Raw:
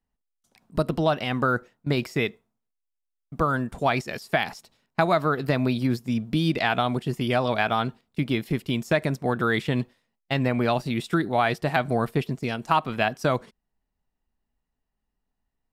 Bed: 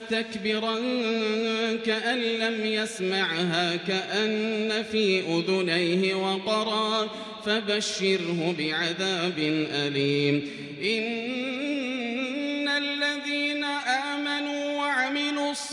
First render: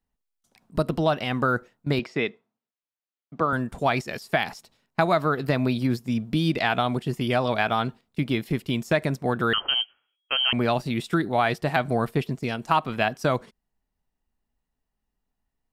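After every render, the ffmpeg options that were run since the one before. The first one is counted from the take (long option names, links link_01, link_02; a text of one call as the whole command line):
ffmpeg -i in.wav -filter_complex "[0:a]asettb=1/sr,asplit=3[link_01][link_02][link_03];[link_01]atrim=end=1.994[link_04];[link_02]atrim=start=1.99:end=3.53,asetpts=PTS-STARTPTS,afade=type=in:duration=0.004:curve=qsin,afade=type=out:start_time=1.536:duration=0.004:curve=qsin,highpass=180,lowpass=4200[link_05];[link_03]atrim=start=3.526[link_06];[link_04][link_05]acrossfade=duration=0.004:curve1=hsin:curve2=qsin[link_07];[link_07][link_06]acrossfade=duration=0.004:curve1=qsin:curve2=hsin,asettb=1/sr,asplit=3[link_08][link_09][link_10];[link_08]atrim=end=9.534[link_11];[link_09]atrim=start=9.53:end=10.53,asetpts=PTS-STARTPTS,afade=type=in:duration=0.004:curve=qsin,afade=type=out:start_time=0.996:duration=0.004:curve=qsin,lowpass=frequency=2800:width_type=q:width=0.5098,lowpass=frequency=2800:width_type=q:width=0.6013,lowpass=frequency=2800:width_type=q:width=0.9,lowpass=frequency=2800:width_type=q:width=2.563,afreqshift=-3300[link_12];[link_10]atrim=start=10.526[link_13];[link_11][link_12]acrossfade=duration=0.004:curve1=hsin:curve2=qsin[link_14];[link_14][link_13]acrossfade=duration=0.004:curve1=qsin:curve2=hsin" out.wav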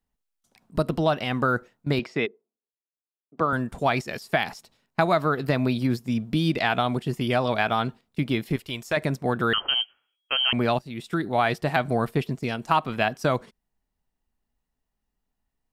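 ffmpeg -i in.wav -filter_complex "[0:a]asplit=3[link_01][link_02][link_03];[link_01]afade=type=out:start_time=2.25:duration=0.02[link_04];[link_02]bandpass=frequency=400:width_type=q:width=3.3,afade=type=in:start_time=2.25:duration=0.02,afade=type=out:start_time=3.37:duration=0.02[link_05];[link_03]afade=type=in:start_time=3.37:duration=0.02[link_06];[link_04][link_05][link_06]amix=inputs=3:normalize=0,asettb=1/sr,asplit=3[link_07][link_08][link_09];[link_07]atrim=end=8.564[link_10];[link_08]atrim=start=8.56:end=8.97,asetpts=PTS-STARTPTS,afade=type=in:duration=0.004:curve=qsin,afade=type=out:start_time=0.406:duration=0.004:curve=qsin,equalizer=frequency=200:width=0.69:gain=-12.5[link_11];[link_09]atrim=start=8.966[link_12];[link_10][link_11]acrossfade=duration=0.004:curve1=hsin:curve2=qsin[link_13];[link_13][link_12]acrossfade=duration=0.004:curve1=qsin:curve2=hsin,asplit=2[link_14][link_15];[link_14]atrim=end=10.79,asetpts=PTS-STARTPTS,afade=type=out:start_time=10.786:duration=0.004:curve=hsin:silence=0.177828[link_16];[link_15]atrim=start=10.79,asetpts=PTS-STARTPTS,afade=type=in:duration=0.6:silence=0.177828[link_17];[link_16][link_17]concat=n=2:v=0:a=1" out.wav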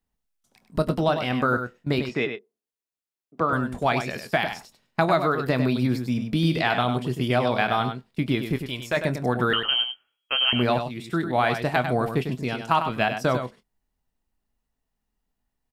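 ffmpeg -i in.wav -filter_complex "[0:a]asplit=2[link_01][link_02];[link_02]adelay=24,volume=-13dB[link_03];[link_01][link_03]amix=inputs=2:normalize=0,asplit=2[link_04][link_05];[link_05]aecho=0:1:99:0.398[link_06];[link_04][link_06]amix=inputs=2:normalize=0" out.wav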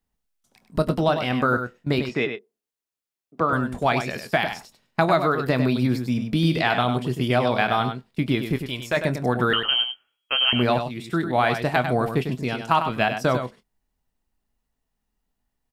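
ffmpeg -i in.wav -af "volume=1.5dB" out.wav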